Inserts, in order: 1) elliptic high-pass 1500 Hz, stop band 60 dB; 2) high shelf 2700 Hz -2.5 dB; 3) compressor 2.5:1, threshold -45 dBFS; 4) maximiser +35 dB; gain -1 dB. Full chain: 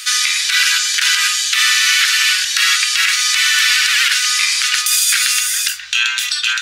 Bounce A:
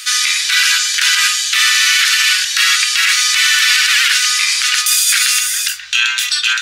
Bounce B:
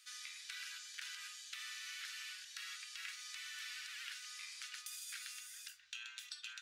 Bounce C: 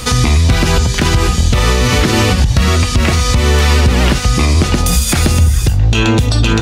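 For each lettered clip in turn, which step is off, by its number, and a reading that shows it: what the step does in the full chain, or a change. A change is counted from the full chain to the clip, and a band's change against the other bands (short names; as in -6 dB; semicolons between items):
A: 3, loudness change +1.5 LU; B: 4, crest factor change +7.5 dB; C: 1, 1 kHz band +13.0 dB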